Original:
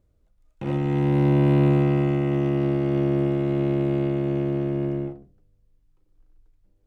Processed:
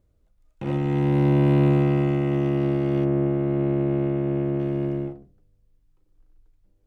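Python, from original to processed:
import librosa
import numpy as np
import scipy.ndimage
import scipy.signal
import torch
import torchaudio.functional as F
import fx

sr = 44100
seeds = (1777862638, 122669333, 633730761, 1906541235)

y = fx.lowpass(x, sr, hz=fx.line((3.04, 1800.0), (4.58, 2400.0)), slope=12, at=(3.04, 4.58), fade=0.02)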